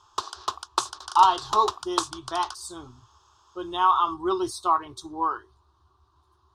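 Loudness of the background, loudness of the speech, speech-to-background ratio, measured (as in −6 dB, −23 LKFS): −32.0 LKFS, −24.5 LKFS, 7.5 dB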